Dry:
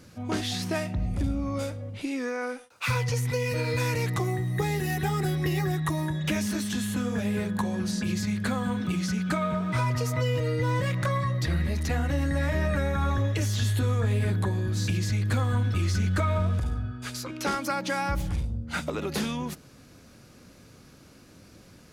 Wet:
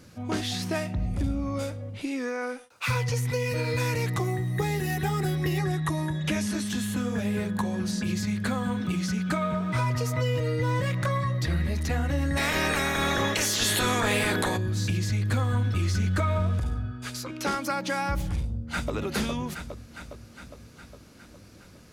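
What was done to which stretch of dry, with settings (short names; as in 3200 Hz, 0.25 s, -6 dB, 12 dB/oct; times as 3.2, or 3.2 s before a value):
5.58–6.67 steep low-pass 12000 Hz 48 dB/oct
12.36–14.56 spectral limiter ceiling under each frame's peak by 27 dB
18.36–18.92 echo throw 0.41 s, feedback 65%, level -4.5 dB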